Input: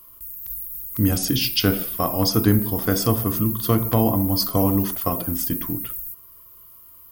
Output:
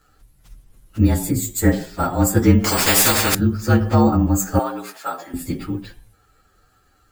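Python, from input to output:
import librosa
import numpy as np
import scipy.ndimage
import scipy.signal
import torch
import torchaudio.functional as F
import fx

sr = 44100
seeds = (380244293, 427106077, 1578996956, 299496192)

y = fx.partial_stretch(x, sr, pct=114)
y = fx.band_shelf(y, sr, hz=4000.0, db=-15.5, octaves=1.3, at=(1.3, 1.71), fade=0.02)
y = fx.highpass(y, sr, hz=680.0, slope=12, at=(4.59, 5.34))
y = np.repeat(scipy.signal.resample_poly(y, 1, 2), 2)[:len(y)]
y = fx.spectral_comp(y, sr, ratio=4.0, at=(2.64, 3.35))
y = y * 10.0 ** (6.0 / 20.0)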